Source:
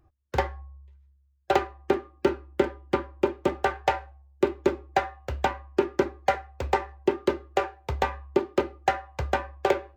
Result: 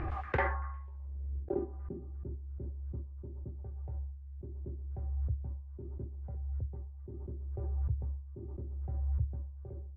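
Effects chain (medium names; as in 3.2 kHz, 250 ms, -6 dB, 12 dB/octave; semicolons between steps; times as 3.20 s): reverse; compression 10:1, threshold -35 dBFS, peak gain reduction 20 dB; reverse; repeats whose band climbs or falls 118 ms, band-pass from 980 Hz, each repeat 0.7 oct, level -12 dB; low-pass sweep 2.1 kHz -> 110 Hz, 0.35–2.18 s; swell ahead of each attack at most 22 dB/s; trim +4.5 dB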